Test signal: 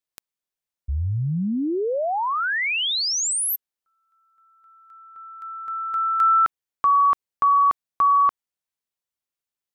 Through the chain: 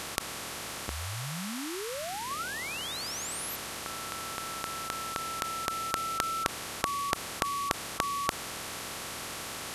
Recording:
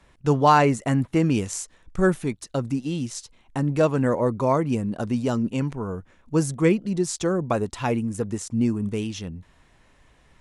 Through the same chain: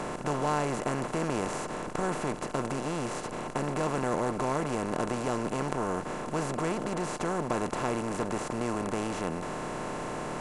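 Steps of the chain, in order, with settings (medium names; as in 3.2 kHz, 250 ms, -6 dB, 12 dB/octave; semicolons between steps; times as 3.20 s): spectral levelling over time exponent 0.2; trim -17 dB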